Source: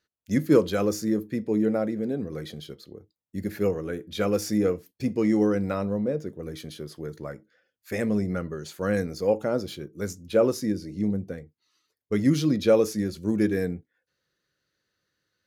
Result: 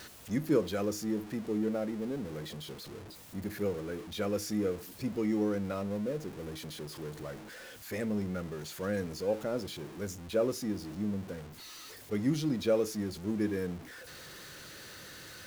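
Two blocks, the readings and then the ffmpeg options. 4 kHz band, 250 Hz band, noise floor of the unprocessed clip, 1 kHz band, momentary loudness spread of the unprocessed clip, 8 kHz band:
-3.5 dB, -8.0 dB, -85 dBFS, -7.0 dB, 16 LU, -4.0 dB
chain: -af "aeval=exprs='val(0)+0.5*0.0224*sgn(val(0))':c=same,volume=-9dB"

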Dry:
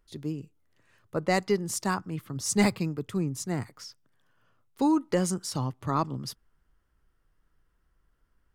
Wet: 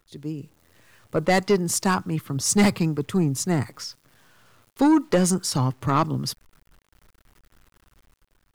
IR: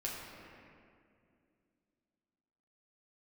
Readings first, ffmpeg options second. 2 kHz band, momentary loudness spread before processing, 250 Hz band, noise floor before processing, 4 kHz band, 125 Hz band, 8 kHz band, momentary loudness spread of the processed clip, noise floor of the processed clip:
+5.5 dB, 14 LU, +6.5 dB, -72 dBFS, +7.0 dB, +7.0 dB, +7.5 dB, 15 LU, -69 dBFS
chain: -af "acrusher=bits=10:mix=0:aa=0.000001,dynaudnorm=f=110:g=9:m=9dB,asoftclip=type=tanh:threshold=-11.5dB"

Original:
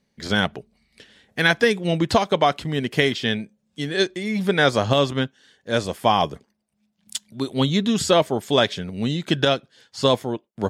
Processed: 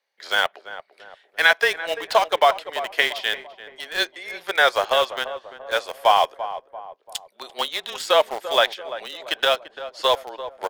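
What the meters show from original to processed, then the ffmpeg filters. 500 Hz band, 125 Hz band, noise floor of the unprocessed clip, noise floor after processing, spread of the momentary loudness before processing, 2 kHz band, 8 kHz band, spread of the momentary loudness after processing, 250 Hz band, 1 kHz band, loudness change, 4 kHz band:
-1.5 dB, under -25 dB, -72 dBFS, -63 dBFS, 11 LU, +3.0 dB, -3.0 dB, 17 LU, -21.0 dB, +2.5 dB, 0.0 dB, +1.0 dB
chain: -filter_complex "[0:a]highpass=f=610:w=0.5412,highpass=f=610:w=1.3066,equalizer=f=7.6k:t=o:w=1.2:g=-8.5,afreqshift=-18,asplit=2[a][b];[b]aeval=exprs='val(0)*gte(abs(val(0)),0.0562)':c=same,volume=-3dB[c];[a][c]amix=inputs=2:normalize=0,asplit=2[d][e];[e]adelay=341,lowpass=f=1.1k:p=1,volume=-11dB,asplit=2[f][g];[g]adelay=341,lowpass=f=1.1k:p=1,volume=0.51,asplit=2[h][i];[i]adelay=341,lowpass=f=1.1k:p=1,volume=0.51,asplit=2[j][k];[k]adelay=341,lowpass=f=1.1k:p=1,volume=0.51,asplit=2[l][m];[m]adelay=341,lowpass=f=1.1k:p=1,volume=0.51[n];[d][f][h][j][l][n]amix=inputs=6:normalize=0,volume=-1dB"

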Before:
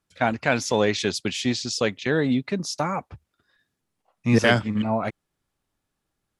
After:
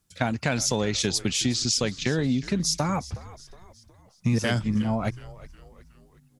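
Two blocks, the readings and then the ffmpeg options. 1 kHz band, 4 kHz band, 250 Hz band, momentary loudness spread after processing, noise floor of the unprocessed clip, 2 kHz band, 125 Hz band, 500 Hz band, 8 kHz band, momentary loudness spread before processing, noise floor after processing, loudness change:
-5.5 dB, +1.5 dB, -2.0 dB, 7 LU, -81 dBFS, -6.0 dB, +1.0 dB, -6.0 dB, +6.0 dB, 8 LU, -60 dBFS, -1.5 dB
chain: -filter_complex "[0:a]bass=f=250:g=9,treble=f=4k:g=11,acompressor=threshold=-21dB:ratio=6,asplit=5[a][b][c][d][e];[b]adelay=365,afreqshift=-89,volume=-17.5dB[f];[c]adelay=730,afreqshift=-178,volume=-23.9dB[g];[d]adelay=1095,afreqshift=-267,volume=-30.3dB[h];[e]adelay=1460,afreqshift=-356,volume=-36.6dB[i];[a][f][g][h][i]amix=inputs=5:normalize=0"

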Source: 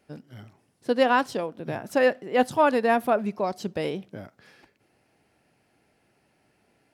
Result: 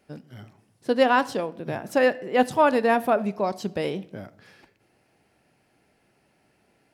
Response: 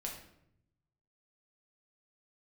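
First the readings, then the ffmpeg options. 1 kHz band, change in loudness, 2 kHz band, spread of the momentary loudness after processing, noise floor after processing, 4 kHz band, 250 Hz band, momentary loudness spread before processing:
+1.5 dB, +1.0 dB, +1.0 dB, 17 LU, -67 dBFS, +1.0 dB, +1.5 dB, 17 LU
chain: -filter_complex "[0:a]asplit=2[a][b];[1:a]atrim=start_sample=2205[c];[b][c]afir=irnorm=-1:irlink=0,volume=-12dB[d];[a][d]amix=inputs=2:normalize=0"

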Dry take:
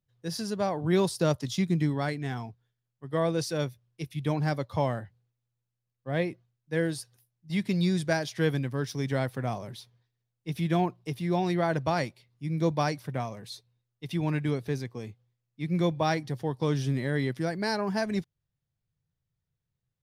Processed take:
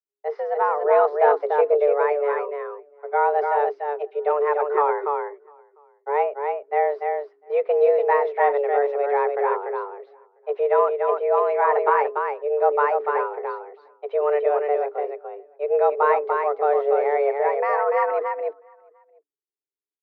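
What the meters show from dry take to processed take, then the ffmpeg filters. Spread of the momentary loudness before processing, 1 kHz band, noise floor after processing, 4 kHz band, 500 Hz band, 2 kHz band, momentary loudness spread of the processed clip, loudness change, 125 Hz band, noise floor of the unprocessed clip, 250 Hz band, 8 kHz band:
12 LU, +14.0 dB, under -85 dBFS, under -15 dB, +12.5 dB, +5.5 dB, 12 LU, +8.0 dB, under -40 dB, -85 dBFS, under -15 dB, under -30 dB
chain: -filter_complex "[0:a]acontrast=90,asplit=2[a][b];[b]aecho=0:1:291:0.596[c];[a][c]amix=inputs=2:normalize=0,agate=range=-33dB:threshold=-42dB:ratio=3:detection=peak,afreqshift=290,lowpass=f=1.8k:w=0.5412,lowpass=f=1.8k:w=1.3066,asplit=2[d][e];[e]adelay=699.7,volume=-29dB,highshelf=f=4k:g=-15.7[f];[d][f]amix=inputs=2:normalize=0"

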